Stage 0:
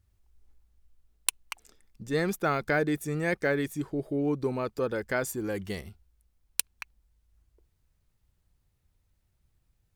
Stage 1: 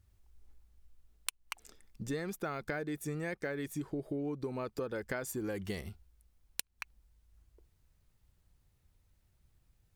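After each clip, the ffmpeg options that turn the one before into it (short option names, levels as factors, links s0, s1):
-af "acompressor=threshold=0.0178:ratio=16,volume=1.19"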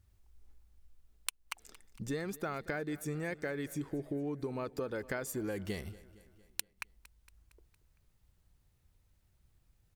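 -af "aecho=1:1:230|460|690|920|1150:0.1|0.057|0.0325|0.0185|0.0106"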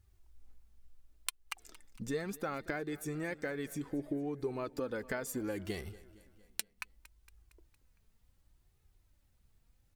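-af "flanger=delay=2.3:depth=2.3:regen=48:speed=0.68:shape=triangular,volume=1.58"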